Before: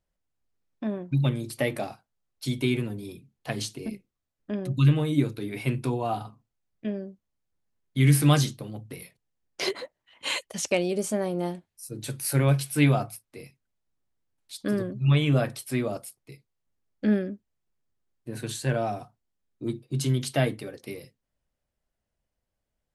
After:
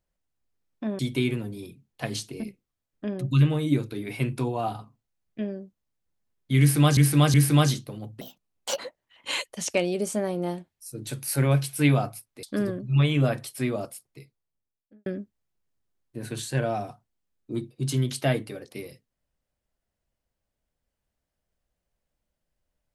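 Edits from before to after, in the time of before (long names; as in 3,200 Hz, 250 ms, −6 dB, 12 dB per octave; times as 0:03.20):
0:00.99–0:02.45: remove
0:08.06–0:08.43: repeat, 3 plays
0:08.93–0:09.76: play speed 143%
0:13.40–0:14.55: remove
0:16.22–0:17.18: fade out and dull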